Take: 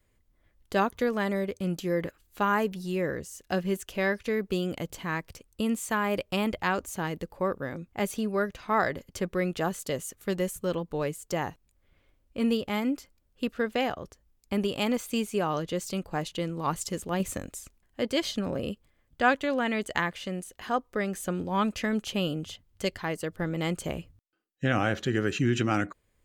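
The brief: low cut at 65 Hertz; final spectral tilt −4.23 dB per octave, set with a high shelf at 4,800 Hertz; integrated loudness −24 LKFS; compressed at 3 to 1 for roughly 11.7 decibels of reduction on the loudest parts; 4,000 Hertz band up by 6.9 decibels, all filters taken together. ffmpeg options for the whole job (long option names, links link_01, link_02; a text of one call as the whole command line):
ffmpeg -i in.wav -af "highpass=65,equalizer=frequency=4000:width_type=o:gain=6,highshelf=frequency=4800:gain=8,acompressor=threshold=-32dB:ratio=3,volume=11dB" out.wav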